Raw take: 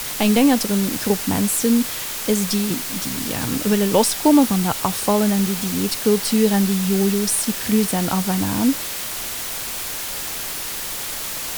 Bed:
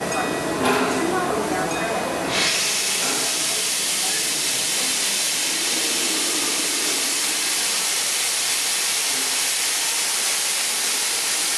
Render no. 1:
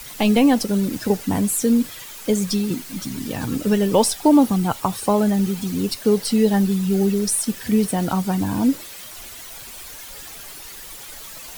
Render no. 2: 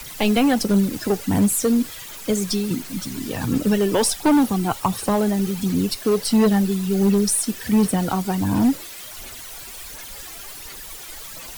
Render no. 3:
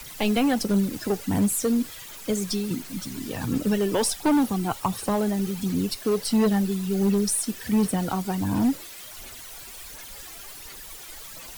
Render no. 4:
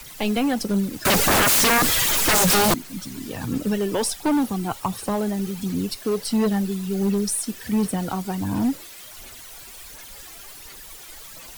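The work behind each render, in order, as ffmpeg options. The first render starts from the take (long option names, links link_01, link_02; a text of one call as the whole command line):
ffmpeg -i in.wav -af "afftdn=noise_reduction=12:noise_floor=-28" out.wav
ffmpeg -i in.wav -filter_complex "[0:a]aphaser=in_gain=1:out_gain=1:delay=3:decay=0.36:speed=1.4:type=sinusoidal,acrossover=split=170|1100|4900[link_01][link_02][link_03][link_04];[link_02]volume=15dB,asoftclip=hard,volume=-15dB[link_05];[link_01][link_05][link_03][link_04]amix=inputs=4:normalize=0" out.wav
ffmpeg -i in.wav -af "volume=-4.5dB" out.wav
ffmpeg -i in.wav -filter_complex "[0:a]asettb=1/sr,asplit=3[link_01][link_02][link_03];[link_01]atrim=end=1.054[link_04];[link_02]atrim=start=1.05:end=2.74,asetpts=PTS-STARTPTS,afade=type=in:duration=0.004:curve=qsin,afade=type=out:start_time=1.686:duration=0.004:curve=qsin,aeval=exprs='0.2*sin(PI/2*7.94*val(0)/0.2)':channel_layout=same[link_05];[link_03]atrim=start=2.736[link_06];[link_04][link_05]acrossfade=duration=0.004:curve1=hsin:curve2=qsin[link_07];[link_07][link_06]acrossfade=duration=0.004:curve1=qsin:curve2=hsin" out.wav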